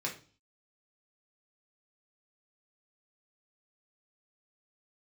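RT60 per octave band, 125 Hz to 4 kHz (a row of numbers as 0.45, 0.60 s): 0.55, 0.50, 0.40, 0.35, 0.35, 0.45 s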